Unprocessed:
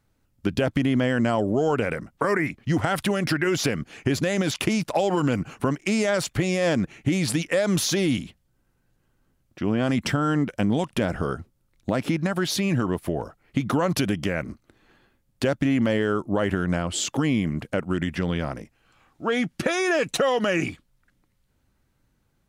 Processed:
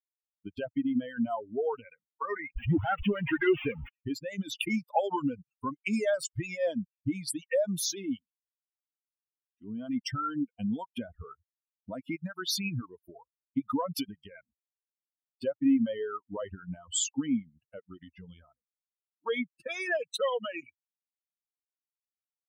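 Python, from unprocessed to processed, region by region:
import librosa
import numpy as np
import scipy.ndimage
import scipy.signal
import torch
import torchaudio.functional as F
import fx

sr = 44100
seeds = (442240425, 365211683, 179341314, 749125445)

y = fx.chain(x, sr, fx.delta_mod(bps=16000, step_db=-25.0),
    fx.leveller(passes=2), at=(2.56, 3.89))
y = fx.bin_expand(y, sr, power=3.0)
y = fx.dereverb_blind(y, sr, rt60_s=0.72)
y = fx.rider(y, sr, range_db=10, speed_s=2.0)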